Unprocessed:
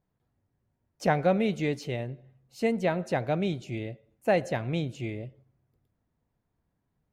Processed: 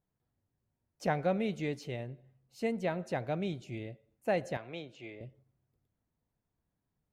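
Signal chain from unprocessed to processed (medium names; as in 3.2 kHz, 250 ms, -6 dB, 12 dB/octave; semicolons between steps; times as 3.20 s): 4.57–5.21 s: three-band isolator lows -15 dB, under 350 Hz, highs -17 dB, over 5.8 kHz; trim -6.5 dB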